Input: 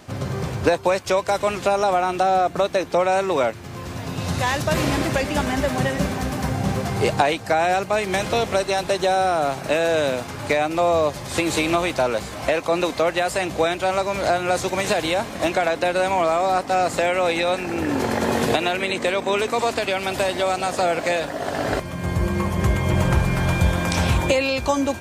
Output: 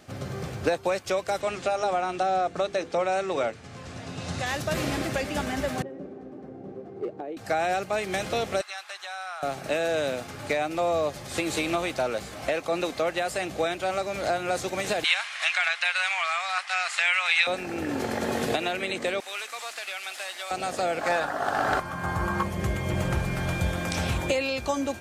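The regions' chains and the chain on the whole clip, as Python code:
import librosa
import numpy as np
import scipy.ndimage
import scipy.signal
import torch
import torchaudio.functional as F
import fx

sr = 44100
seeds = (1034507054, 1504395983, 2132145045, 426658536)

y = fx.chain(x, sr, fx.lowpass(hz=9100.0, slope=24),
    fx.hum_notches(base_hz=50, count=10), at=(1.41, 4.46))
y = fx.chain(y, sr, fx.bandpass_q(hz=360.0, q=3.0),
    fx.overload_stage(gain_db=18.5), at=(5.82, 7.37))
y = fx.chain(y, sr, fx.highpass(hz=1100.0, slope=24),
    fx.tilt_eq(slope=-2.5), at=(8.61, 9.43))
y = fx.chain(y, sr, fx.highpass(hz=1000.0, slope=24),
    fx.peak_eq(hz=2500.0, db=11.5, octaves=1.9),
    fx.resample_bad(factor=2, down='none', up='filtered'), at=(15.04, 17.47))
y = fx.chain(y, sr, fx.delta_mod(bps=64000, step_db=-32.5),
    fx.highpass(hz=1300.0, slope=12), at=(19.2, 20.51))
y = fx.chain(y, sr, fx.band_shelf(hz=1100.0, db=12.5, octaves=1.3),
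    fx.overload_stage(gain_db=10.0), at=(21.01, 22.43))
y = fx.low_shelf(y, sr, hz=180.0, db=-3.5)
y = fx.notch(y, sr, hz=980.0, q=6.7)
y = y * librosa.db_to_amplitude(-6.0)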